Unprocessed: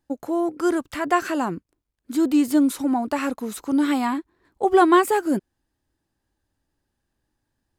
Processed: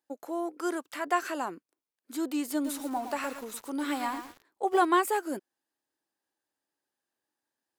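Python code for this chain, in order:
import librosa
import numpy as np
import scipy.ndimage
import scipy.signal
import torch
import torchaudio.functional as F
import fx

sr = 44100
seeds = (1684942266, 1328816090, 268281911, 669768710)

y = scipy.signal.sosfilt(scipy.signal.butter(2, 400.0, 'highpass', fs=sr, output='sos'), x)
y = fx.high_shelf(y, sr, hz=8800.0, db=4.0)
y = fx.echo_crushed(y, sr, ms=114, feedback_pct=35, bits=6, wet_db=-8, at=(2.53, 4.85))
y = F.gain(torch.from_numpy(y), -6.5).numpy()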